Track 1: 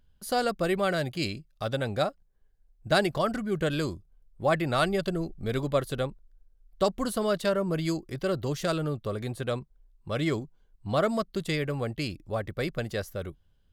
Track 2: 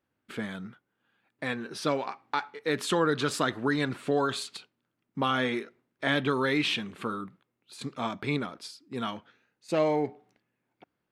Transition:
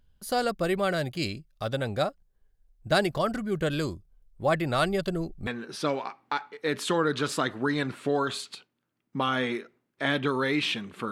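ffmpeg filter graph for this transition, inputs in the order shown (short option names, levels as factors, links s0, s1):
-filter_complex "[0:a]apad=whole_dur=11.11,atrim=end=11.11,atrim=end=5.472[s0];[1:a]atrim=start=1.488:end=7.13[s1];[s0][s1]acrossfade=d=0.004:c1=hsin:c2=hsin"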